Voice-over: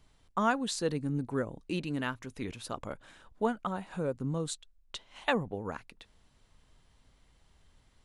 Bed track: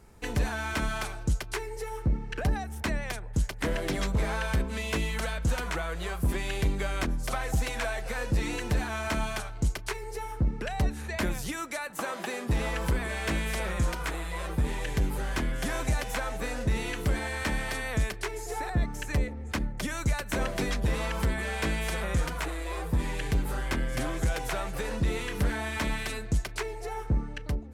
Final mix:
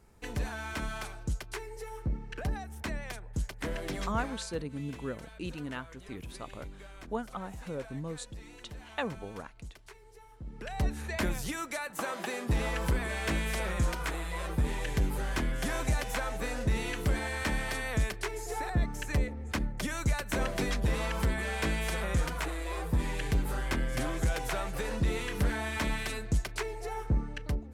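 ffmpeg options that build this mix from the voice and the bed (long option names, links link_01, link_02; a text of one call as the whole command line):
ffmpeg -i stem1.wav -i stem2.wav -filter_complex "[0:a]adelay=3700,volume=-5dB[link_01];[1:a]volume=11dB,afade=type=out:start_time=4.01:duration=0.48:silence=0.237137,afade=type=in:start_time=10.44:duration=0.48:silence=0.141254[link_02];[link_01][link_02]amix=inputs=2:normalize=0" out.wav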